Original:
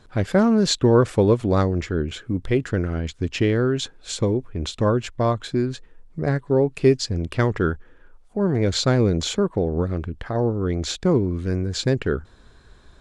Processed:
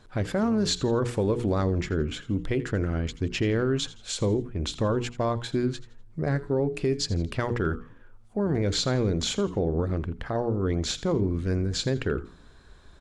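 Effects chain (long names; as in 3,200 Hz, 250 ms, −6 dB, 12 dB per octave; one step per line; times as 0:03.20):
mains-hum notches 60/120/180/240/300/360/420/480 Hz
brickwall limiter −15 dBFS, peak gain reduction 9.5 dB
echo with shifted repeats 83 ms, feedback 36%, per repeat −120 Hz, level −17 dB
level −2 dB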